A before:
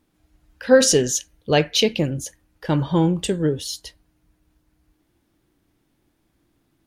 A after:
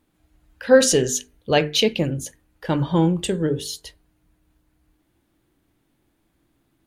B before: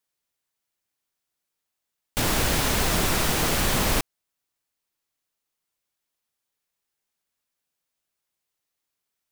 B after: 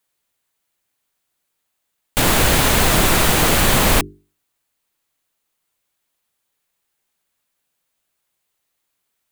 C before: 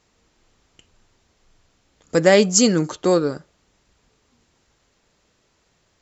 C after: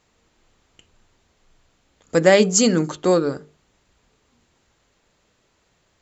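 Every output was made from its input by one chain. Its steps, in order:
parametric band 5,400 Hz −4.5 dB 0.44 octaves
mains-hum notches 50/100/150/200/250/300/350/400/450 Hz
normalise the peak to −1.5 dBFS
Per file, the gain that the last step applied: +0.5, +8.5, +0.5 decibels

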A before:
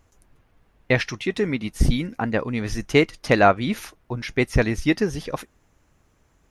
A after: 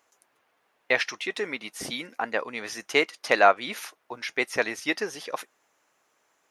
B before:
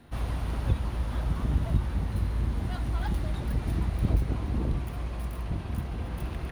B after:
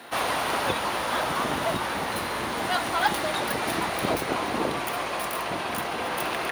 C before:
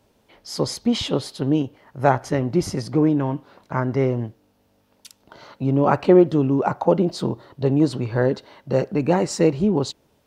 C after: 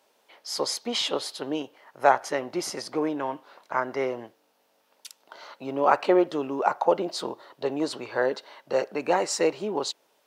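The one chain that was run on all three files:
high-pass filter 580 Hz 12 dB per octave
loudness normalisation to −27 LKFS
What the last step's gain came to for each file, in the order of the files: −0.5, +17.5, +0.5 decibels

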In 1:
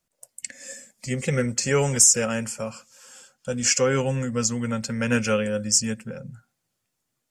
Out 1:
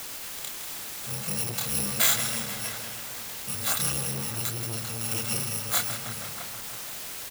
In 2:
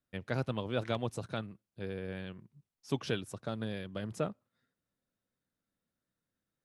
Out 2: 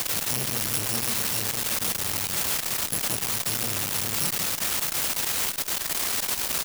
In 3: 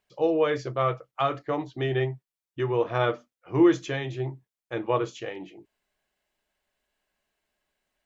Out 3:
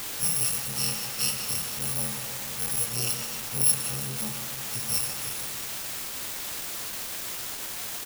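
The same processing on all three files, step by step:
samples in bit-reversed order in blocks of 128 samples
tape delay 161 ms, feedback 75%, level −7 dB, low-pass 5,500 Hz
multi-voice chorus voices 2, 0.65 Hz, delay 28 ms, depth 2.9 ms
high-pass filter 42 Hz 12 dB per octave
slap from a distant wall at 110 metres, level −13 dB
bit-depth reduction 6 bits, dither triangular
saturating transformer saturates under 2,000 Hz
normalise the peak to −9 dBFS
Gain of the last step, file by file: −1.5, +11.5, +2.0 decibels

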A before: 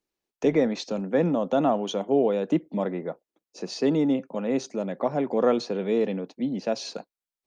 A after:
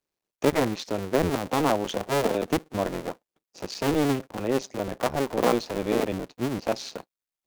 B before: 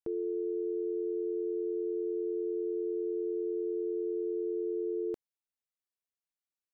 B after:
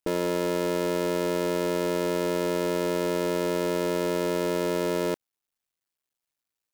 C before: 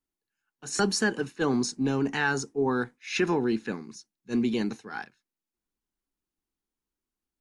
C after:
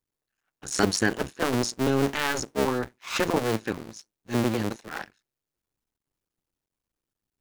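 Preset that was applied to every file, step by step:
sub-harmonics by changed cycles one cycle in 2, muted
loudness normalisation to −27 LKFS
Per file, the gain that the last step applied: +2.0, +10.0, +4.5 decibels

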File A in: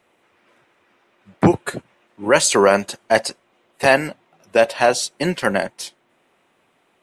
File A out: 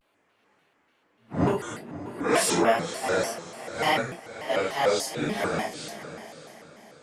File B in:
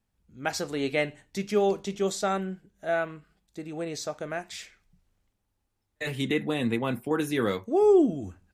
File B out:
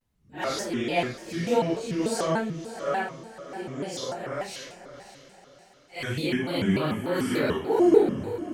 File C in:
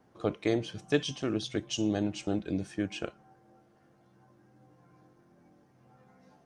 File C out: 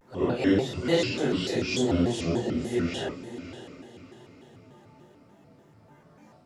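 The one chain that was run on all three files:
random phases in long frames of 200 ms
feedback delay with all-pass diffusion 583 ms, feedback 42%, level −12.5 dB
pitch modulation by a square or saw wave square 3.4 Hz, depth 250 cents
loudness normalisation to −27 LKFS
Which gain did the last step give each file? −7.5, +1.0, +5.5 decibels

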